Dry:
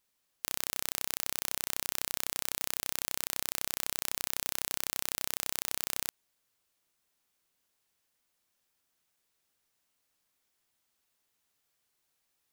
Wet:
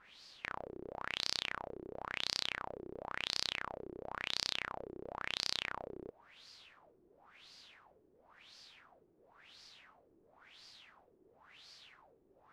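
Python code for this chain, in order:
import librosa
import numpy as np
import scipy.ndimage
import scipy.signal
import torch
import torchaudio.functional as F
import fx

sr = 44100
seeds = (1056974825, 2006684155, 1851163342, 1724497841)

y = (np.mod(10.0 ** (10.0 / 20.0) * x + 1.0, 2.0) - 1.0) / 10.0 ** (10.0 / 20.0)
y = fx.filter_lfo_lowpass(y, sr, shape='sine', hz=0.96, low_hz=360.0, high_hz=4800.0, q=5.5)
y = y * 10.0 ** (18.0 / 20.0)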